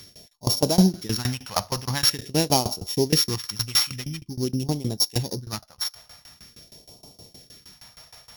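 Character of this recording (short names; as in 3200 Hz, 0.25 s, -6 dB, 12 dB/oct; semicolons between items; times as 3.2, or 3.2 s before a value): a buzz of ramps at a fixed pitch in blocks of 8 samples; phasing stages 2, 0.46 Hz, lowest notch 310–1600 Hz; tremolo saw down 6.4 Hz, depth 95%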